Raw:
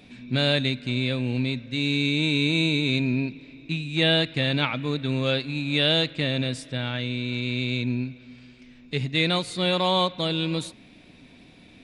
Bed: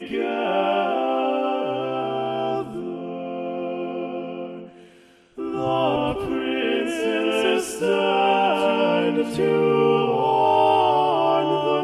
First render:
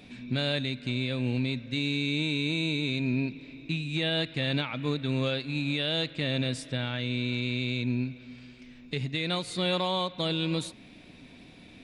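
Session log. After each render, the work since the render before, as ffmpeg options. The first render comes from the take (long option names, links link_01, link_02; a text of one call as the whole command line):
ffmpeg -i in.wav -af "alimiter=limit=-19dB:level=0:latency=1:release=290" out.wav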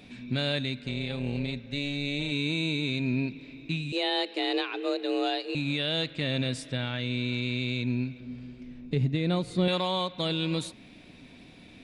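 ffmpeg -i in.wav -filter_complex "[0:a]asettb=1/sr,asplit=3[link_01][link_02][link_03];[link_01]atrim=end=0.834[link_04];[link_02]atrim=start=0.83:end=2.32,asetpts=PTS-STARTPTS,afade=type=in:duration=0.004:curve=qsin,afade=type=out:start_time=1.486:duration=0.004:curve=qsin,tremolo=f=290:d=0.571[link_05];[link_03]atrim=start=2.316[link_06];[link_04][link_05]acrossfade=duration=0.004:curve1=hsin:curve2=qsin[link_07];[link_07][link_06]acrossfade=duration=0.004:curve1=qsin:curve2=hsin,asettb=1/sr,asplit=3[link_08][link_09][link_10];[link_08]atrim=end=3.924[link_11];[link_09]atrim=start=3.92:end=5.55,asetpts=PTS-STARTPTS,afade=type=in:duration=0.004:curve=qsin,afade=type=out:start_time=1.626:duration=0.004:curve=qsin,afreqshift=180[link_12];[link_10]atrim=start=5.546[link_13];[link_11][link_12]acrossfade=duration=0.004:curve1=hsin:curve2=qsin[link_14];[link_14][link_13]acrossfade=duration=0.004:curve1=qsin:curve2=hsin,asettb=1/sr,asplit=3[link_15][link_16][link_17];[link_15]atrim=end=8.204[link_18];[link_16]atrim=start=8.2:end=9.68,asetpts=PTS-STARTPTS,afade=type=in:duration=0.004:curve=qsin,afade=type=out:start_time=1.476:duration=0.004:curve=qsin,tiltshelf=frequency=850:gain=7.5[link_19];[link_17]atrim=start=9.676[link_20];[link_18][link_19]acrossfade=duration=0.004:curve1=hsin:curve2=qsin[link_21];[link_21][link_20]acrossfade=duration=0.004:curve1=qsin:curve2=hsin" out.wav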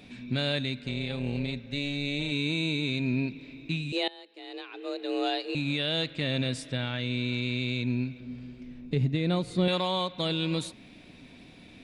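ffmpeg -i in.wav -filter_complex "[0:a]asplit=2[link_01][link_02];[link_01]atrim=end=4.08,asetpts=PTS-STARTPTS,afade=type=out:start_time=4.076:duration=0.004:curve=hsin:silence=0.0891251[link_03];[link_02]atrim=start=4.08,asetpts=PTS-STARTPTS,afade=type=in:duration=1.2:curve=qua:silence=0.0891251[link_04];[link_03][link_04]concat=n=2:v=0:a=1" out.wav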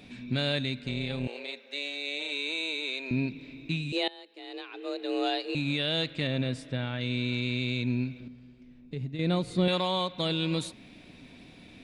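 ffmpeg -i in.wav -filter_complex "[0:a]asettb=1/sr,asplit=3[link_01][link_02][link_03];[link_01]atrim=end=1.274[link_04];[link_02]atrim=start=1.27:end=3.11,asetpts=PTS-STARTPTS,afade=type=in:duration=0.004:curve=qsin,afade=type=out:start_time=1.836:duration=0.004:curve=qsin,highpass=frequency=420:width=0.5412,highpass=frequency=420:width=1.3066[link_05];[link_03]atrim=start=3.106[link_06];[link_04][link_05]acrossfade=duration=0.004:curve1=hsin:curve2=qsin[link_07];[link_07][link_06]acrossfade=duration=0.004:curve1=qsin:curve2=hsin,asettb=1/sr,asplit=3[link_08][link_09][link_10];[link_08]atrim=end=6.274[link_11];[link_09]atrim=start=6.27:end=7.01,asetpts=PTS-STARTPTS,afade=type=in:duration=0.004:curve=qsin,afade=type=out:start_time=0.736:duration=0.004:curve=qsin,highshelf=frequency=3000:gain=-9.5[link_12];[link_10]atrim=start=7.006[link_13];[link_11][link_12]acrossfade=duration=0.004:curve1=hsin:curve2=qsin[link_14];[link_14][link_13]acrossfade=duration=0.004:curve1=qsin:curve2=hsin,asplit=3[link_15][link_16][link_17];[link_15]atrim=end=8.282[link_18];[link_16]atrim=start=8.278:end=9.192,asetpts=PTS-STARTPTS,volume=-9dB[link_19];[link_17]atrim=start=9.188[link_20];[link_18][link_19]acrossfade=duration=0.004:curve1=hsin:curve2=hsin[link_21];[link_21][link_20]acrossfade=duration=0.004:curve1=hsin:curve2=hsin" out.wav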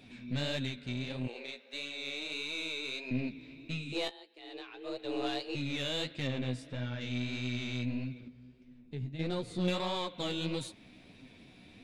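ffmpeg -i in.wav -af "aeval=exprs='(tanh(12.6*val(0)+0.4)-tanh(0.4))/12.6':channel_layout=same,flanger=delay=7.6:depth=8.8:regen=21:speed=1.6:shape=sinusoidal" out.wav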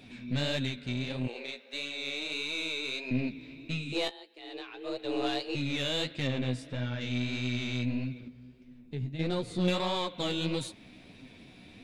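ffmpeg -i in.wav -af "volume=3.5dB" out.wav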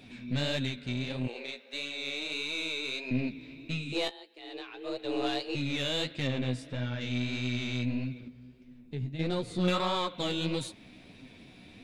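ffmpeg -i in.wav -filter_complex "[0:a]asettb=1/sr,asplit=3[link_01][link_02][link_03];[link_01]atrim=end=9.634[link_04];[link_02]atrim=start=9.63:end=10.16,asetpts=PTS-STARTPTS,afade=type=in:duration=0.004:curve=qsin,afade=type=out:start_time=0.526:duration=0.004:curve=qsin,equalizer=frequency=1300:width_type=o:width=0.34:gain=11[link_05];[link_03]atrim=start=10.156[link_06];[link_04][link_05]acrossfade=duration=0.004:curve1=hsin:curve2=qsin[link_07];[link_07][link_06]acrossfade=duration=0.004:curve1=qsin:curve2=hsin" out.wav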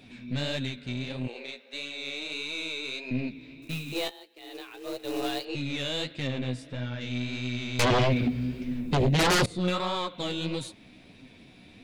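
ffmpeg -i in.wav -filter_complex "[0:a]asettb=1/sr,asplit=3[link_01][link_02][link_03];[link_01]atrim=end=3.624[link_04];[link_02]atrim=start=3.62:end=5.45,asetpts=PTS-STARTPTS,afade=type=in:duration=0.004:curve=qsin,afade=type=out:start_time=1.826:duration=0.004:curve=qsin,acrusher=bits=3:mode=log:mix=0:aa=0.000001[link_05];[link_03]atrim=start=5.446[link_06];[link_04][link_05]acrossfade=duration=0.004:curve1=hsin:curve2=qsin[link_07];[link_07][link_06]acrossfade=duration=0.004:curve1=qsin:curve2=hsin,asettb=1/sr,asplit=3[link_08][link_09][link_10];[link_08]atrim=end=7.794[link_11];[link_09]atrim=start=7.79:end=9.46,asetpts=PTS-STARTPTS,afade=type=in:duration=0.004:curve=qsin,afade=type=out:start_time=1.666:duration=0.004:curve=qsin,aeval=exprs='0.112*sin(PI/2*7.08*val(0)/0.112)':channel_layout=same[link_12];[link_10]atrim=start=9.456[link_13];[link_11][link_12]acrossfade=duration=0.004:curve1=hsin:curve2=qsin[link_14];[link_14][link_13]acrossfade=duration=0.004:curve1=qsin:curve2=hsin" out.wav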